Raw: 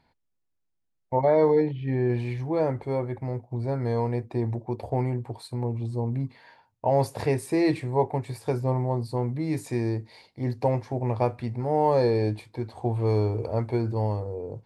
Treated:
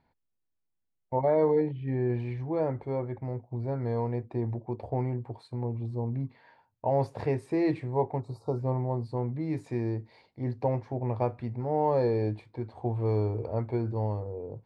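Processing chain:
high-shelf EQ 3,100 Hz −9.5 dB
gain on a spectral selection 0:08.20–0:08.58, 1,400–3,700 Hz −25 dB
high-frequency loss of the air 54 metres
level −3.5 dB

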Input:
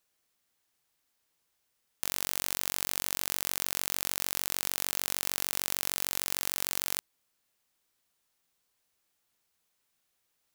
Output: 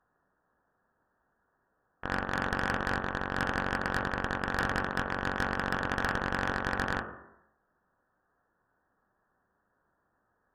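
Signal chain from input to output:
each half-wave held at its own peak
Butterworth high-pass 740 Hz 48 dB per octave
voice inversion scrambler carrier 2,500 Hz
on a send at −7.5 dB: convolution reverb RT60 0.85 s, pre-delay 3 ms
on the sum: tube saturation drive 30 dB, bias 0.5
level +8.5 dB

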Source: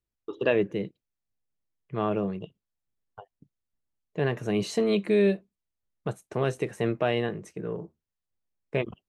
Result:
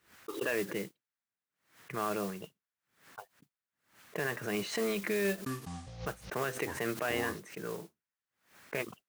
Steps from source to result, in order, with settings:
high-pass filter 140 Hz 12 dB per octave
parametric band 1,600 Hz +13 dB 1.6 octaves
brickwall limiter −15 dBFS, peak gain reduction 9 dB
noise that follows the level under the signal 13 dB
0:05.26–0:07.40: delay with pitch and tempo change per echo 201 ms, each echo −7 semitones, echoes 3, each echo −6 dB
background raised ahead of every attack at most 130 dB per second
level −8 dB

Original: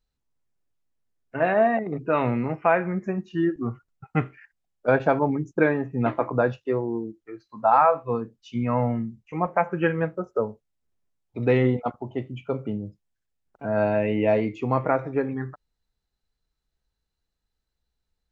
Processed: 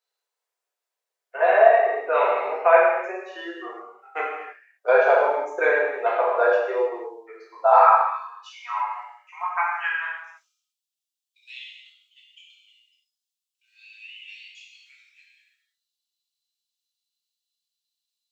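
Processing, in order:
Butterworth high-pass 440 Hz 48 dB per octave, from 0:07.78 910 Hz, from 0:10.16 2,800 Hz
reverb whose tail is shaped and stops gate 350 ms falling, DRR −5.5 dB
level −1 dB

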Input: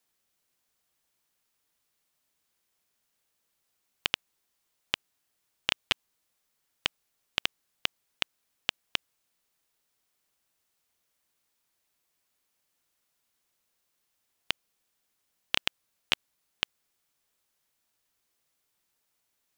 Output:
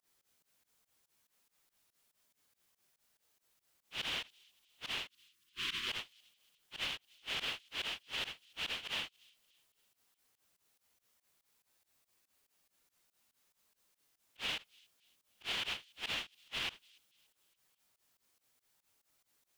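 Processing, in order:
random phases in long frames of 200 ms
in parallel at +2 dB: downward compressor, threshold −42 dBFS, peak gain reduction 14.5 dB
on the sum: time-frequency box erased 0:05.08–0:05.88, 430–980 Hz
fake sidechain pumping 142 BPM, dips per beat 2, −23 dB, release 100 ms
brickwall limiter −23.5 dBFS, peak gain reduction 6.5 dB
delay with a high-pass on its return 288 ms, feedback 40%, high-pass 3,800 Hz, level −22 dB
level −4.5 dB

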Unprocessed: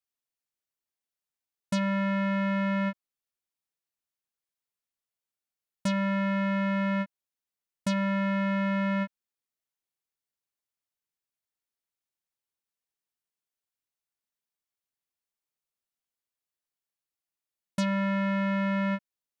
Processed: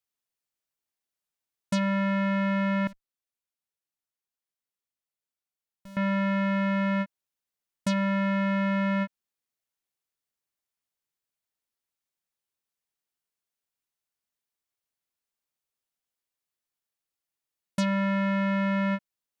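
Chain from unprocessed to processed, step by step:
0:02.87–0:05.97: tube saturation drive 46 dB, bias 0.75
level +1.5 dB

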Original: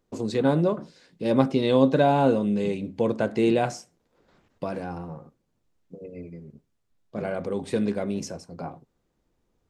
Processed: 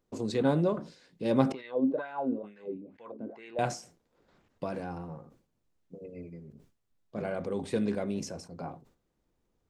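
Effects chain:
0:01.52–0:03.59: LFO wah 2.2 Hz 250–1,900 Hz, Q 4.6
level that may fall only so fast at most 130 dB per second
level −4.5 dB

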